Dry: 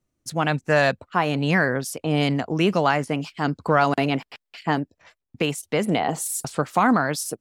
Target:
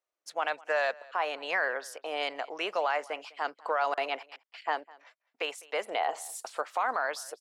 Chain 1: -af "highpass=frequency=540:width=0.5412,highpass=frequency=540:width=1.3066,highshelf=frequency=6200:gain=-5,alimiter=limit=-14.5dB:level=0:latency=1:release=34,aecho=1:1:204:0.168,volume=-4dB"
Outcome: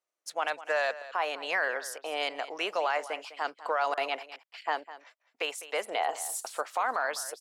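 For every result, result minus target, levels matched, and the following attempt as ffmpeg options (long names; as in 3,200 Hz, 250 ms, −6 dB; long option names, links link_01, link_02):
8,000 Hz band +5.0 dB; echo-to-direct +7.5 dB
-af "highpass=frequency=540:width=0.5412,highpass=frequency=540:width=1.3066,highshelf=frequency=6200:gain=-13.5,alimiter=limit=-14.5dB:level=0:latency=1:release=34,aecho=1:1:204:0.168,volume=-4dB"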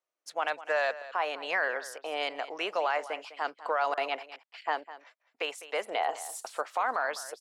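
echo-to-direct +7.5 dB
-af "highpass=frequency=540:width=0.5412,highpass=frequency=540:width=1.3066,highshelf=frequency=6200:gain=-13.5,alimiter=limit=-14.5dB:level=0:latency=1:release=34,aecho=1:1:204:0.0708,volume=-4dB"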